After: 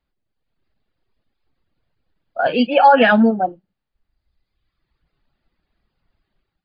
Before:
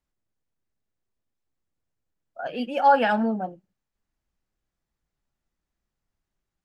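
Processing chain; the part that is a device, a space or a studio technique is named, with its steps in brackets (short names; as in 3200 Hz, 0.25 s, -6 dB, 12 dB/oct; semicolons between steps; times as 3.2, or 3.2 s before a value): reverb removal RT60 1.3 s; notch 1000 Hz, Q 29; 2.41–3 low shelf 140 Hz -2.5 dB; low-bitrate web radio (AGC gain up to 9.5 dB; limiter -9.5 dBFS, peak gain reduction 7.5 dB; gain +7 dB; MP3 24 kbps 11025 Hz)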